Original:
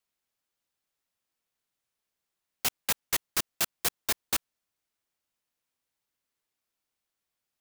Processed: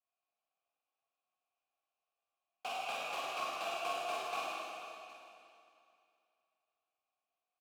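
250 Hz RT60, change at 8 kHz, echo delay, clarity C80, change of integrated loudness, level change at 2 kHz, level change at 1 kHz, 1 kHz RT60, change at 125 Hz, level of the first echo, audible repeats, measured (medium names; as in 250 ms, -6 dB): 2.7 s, -20.0 dB, 41 ms, -3.0 dB, -9.5 dB, -5.0 dB, +3.5 dB, 2.6 s, under -15 dB, -2.0 dB, 2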